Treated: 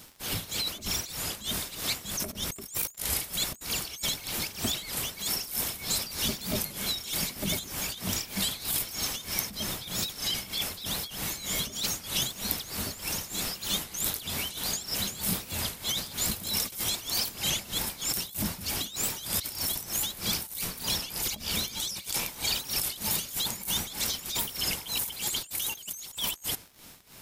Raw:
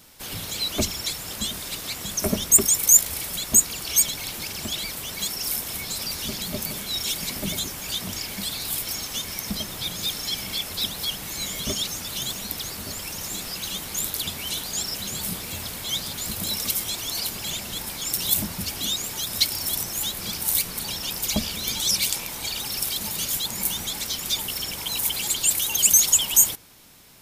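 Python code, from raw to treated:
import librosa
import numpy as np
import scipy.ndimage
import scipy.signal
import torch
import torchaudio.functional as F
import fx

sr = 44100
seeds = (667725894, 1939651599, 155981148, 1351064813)

y = fx.over_compress(x, sr, threshold_db=-29.0, ratio=-1.0)
y = y * (1.0 - 0.81 / 2.0 + 0.81 / 2.0 * np.cos(2.0 * np.pi * 3.2 * (np.arange(len(y)) / sr)))
y = fx.dmg_crackle(y, sr, seeds[0], per_s=51.0, level_db=-40.0)
y = fx.record_warp(y, sr, rpm=33.33, depth_cents=100.0)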